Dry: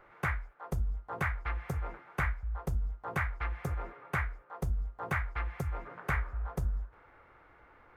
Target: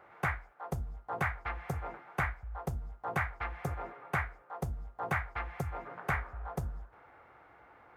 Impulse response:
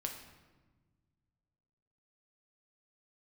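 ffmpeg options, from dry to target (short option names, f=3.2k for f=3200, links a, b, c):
-af "highpass=78,equalizer=f=750:t=o:w=0.44:g=6.5"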